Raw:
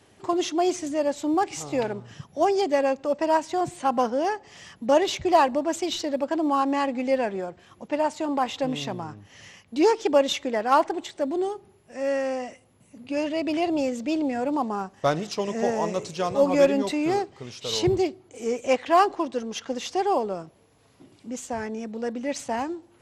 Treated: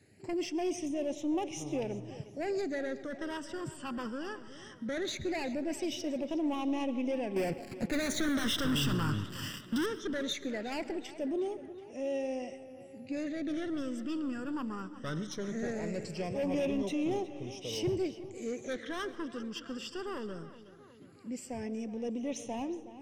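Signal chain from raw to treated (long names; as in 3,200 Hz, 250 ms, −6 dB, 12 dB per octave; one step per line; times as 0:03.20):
high-pass filter 80 Hz
low-shelf EQ 210 Hz +4 dB
0:07.36–0:09.86: leveller curve on the samples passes 5
soft clipping −21 dBFS, distortion −8 dB
all-pass phaser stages 12, 0.19 Hz, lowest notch 690–1,500 Hz
tape delay 366 ms, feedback 62%, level −14 dB, low-pass 4,200 Hz
convolution reverb RT60 0.65 s, pre-delay 85 ms, DRR 16.5 dB
level −5.5 dB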